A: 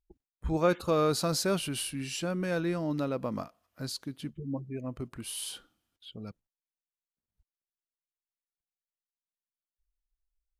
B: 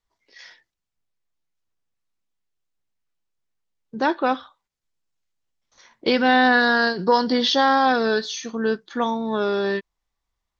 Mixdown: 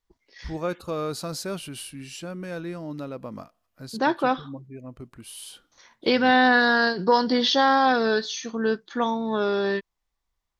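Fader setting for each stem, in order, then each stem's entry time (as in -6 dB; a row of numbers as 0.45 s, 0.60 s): -3.0 dB, -1.5 dB; 0.00 s, 0.00 s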